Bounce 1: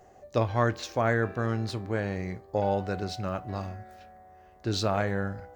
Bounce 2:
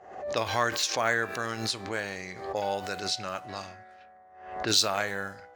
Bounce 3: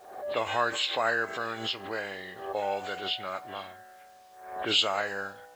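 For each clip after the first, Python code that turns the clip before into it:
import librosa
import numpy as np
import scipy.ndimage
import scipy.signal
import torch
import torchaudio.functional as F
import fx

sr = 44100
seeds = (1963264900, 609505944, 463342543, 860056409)

y1 = fx.env_lowpass(x, sr, base_hz=1300.0, full_db=-26.0)
y1 = fx.tilt_eq(y1, sr, slope=4.5)
y1 = fx.pre_swell(y1, sr, db_per_s=74.0)
y2 = fx.freq_compress(y1, sr, knee_hz=1500.0, ratio=1.5)
y2 = fx.bass_treble(y2, sr, bass_db=-9, treble_db=1)
y2 = fx.quant_dither(y2, sr, seeds[0], bits=10, dither='none')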